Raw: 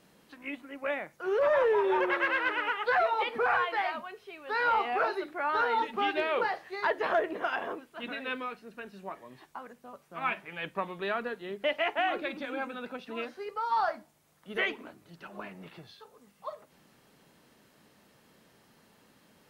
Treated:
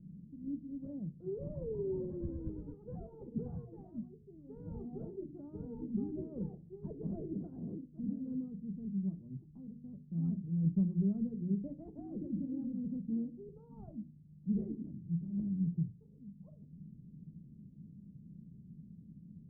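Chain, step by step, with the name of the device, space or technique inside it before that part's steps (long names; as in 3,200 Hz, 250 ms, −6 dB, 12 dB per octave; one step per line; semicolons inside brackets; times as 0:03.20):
mains-hum notches 60/120/180/240/300/360/420/480/540 Hz
0:02.20–0:02.75: low-shelf EQ 160 Hz +11 dB
the neighbour's flat through the wall (low-pass filter 200 Hz 24 dB per octave; parametric band 170 Hz +7 dB 0.5 octaves)
level +14 dB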